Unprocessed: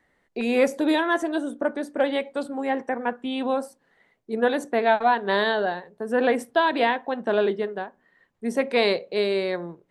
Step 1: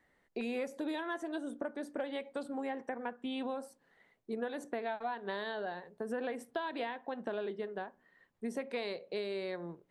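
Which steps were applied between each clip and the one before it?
compressor, threshold -30 dBFS, peak gain reduction 14.5 dB; gain -5 dB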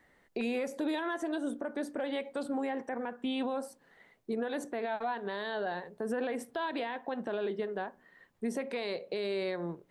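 limiter -32 dBFS, peak gain reduction 8 dB; gain +6.5 dB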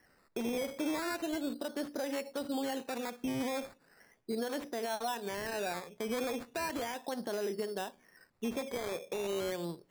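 decimation with a swept rate 12×, swing 60% 0.37 Hz; gain -1.5 dB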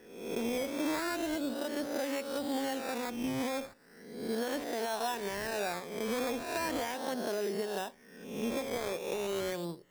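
spectral swells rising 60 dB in 0.84 s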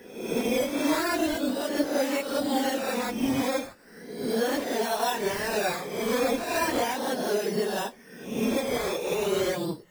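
phase scrambler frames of 50 ms; gain +7.5 dB

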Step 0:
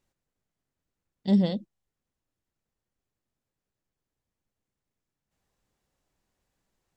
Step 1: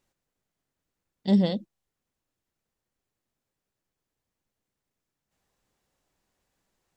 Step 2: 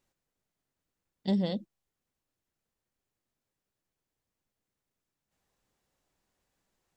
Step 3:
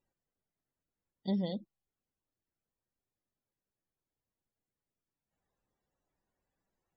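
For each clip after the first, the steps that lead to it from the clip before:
low shelf 190 Hz -5 dB; gain +3 dB
compressor 4:1, threshold -22 dBFS, peak gain reduction 6 dB; gain -2.5 dB
loudest bins only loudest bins 64; gain -4.5 dB

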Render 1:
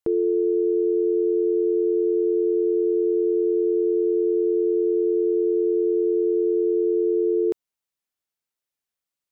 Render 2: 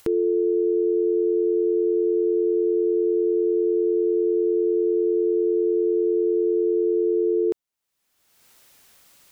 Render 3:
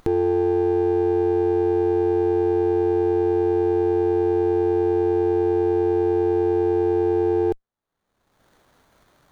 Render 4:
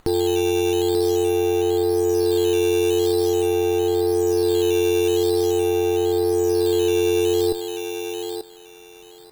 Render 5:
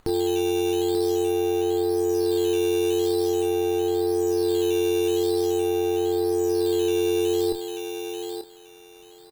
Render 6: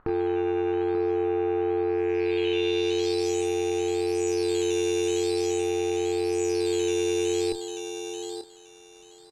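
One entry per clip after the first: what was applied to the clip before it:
upward compressor, threshold -29 dBFS
low shelf 170 Hz +9.5 dB; running maximum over 17 samples
decimation with a swept rate 8×, swing 160% 0.46 Hz; thinning echo 0.887 s, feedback 23%, high-pass 550 Hz, level -4.5 dB
doubler 29 ms -9 dB; gain -4.5 dB
rattling part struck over -29 dBFS, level -28 dBFS; low-pass sweep 1400 Hz -> 7200 Hz, 1.85–3.29; gain -3 dB

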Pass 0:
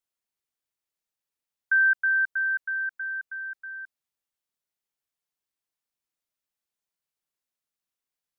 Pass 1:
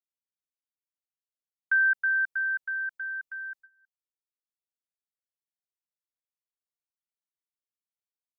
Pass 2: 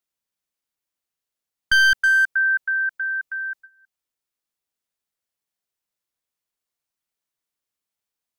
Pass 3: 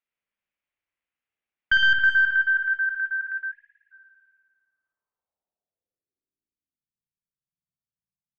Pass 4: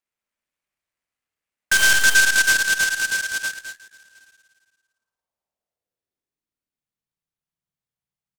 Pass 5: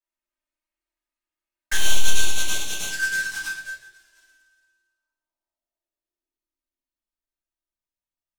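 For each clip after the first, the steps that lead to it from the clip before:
gate with hold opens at -34 dBFS; bell 1500 Hz -6 dB 1 oct; transient shaper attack +1 dB, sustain -7 dB; gain +3.5 dB
one-sided fold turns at -22.5 dBFS; gain +9 dB
spring tank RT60 1.5 s, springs 54 ms, chirp 75 ms, DRR -0.5 dB; low-pass sweep 2400 Hz -> 160 Hz, 4.23–7.09; spectral delete 3.51–3.92, 200–1600 Hz; gain -5.5 dB
on a send: tapped delay 0.1/0.215/0.366 s -16/-5/-18 dB; on the sum: noise-modulated delay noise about 5400 Hz, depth 0.055 ms; gain +2 dB
envelope flanger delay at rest 3.2 ms, full sweep at -17 dBFS; shoebox room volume 53 m³, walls mixed, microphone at 1.2 m; gain -7.5 dB

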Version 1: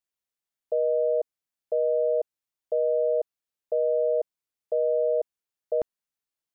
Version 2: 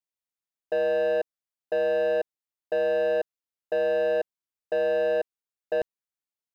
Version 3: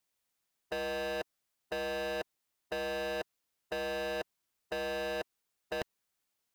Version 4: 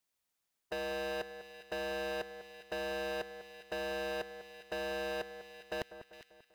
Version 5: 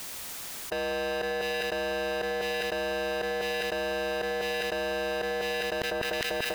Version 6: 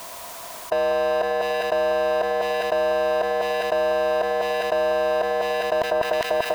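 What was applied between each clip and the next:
sample leveller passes 2; gain -2.5 dB
spectral compressor 2:1; gain -5 dB
split-band echo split 1700 Hz, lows 0.196 s, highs 0.41 s, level -12 dB; gain -2 dB
fast leveller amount 100%; gain +5 dB
small resonant body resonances 680/980 Hz, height 17 dB, ringing for 25 ms

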